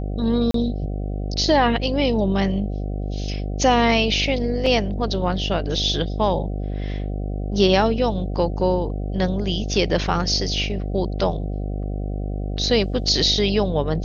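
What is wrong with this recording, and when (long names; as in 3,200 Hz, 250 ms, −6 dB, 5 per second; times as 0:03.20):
mains buzz 50 Hz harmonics 15 −26 dBFS
0:00.51–0:00.54: drop-out 33 ms
0:04.66: drop-out 3.5 ms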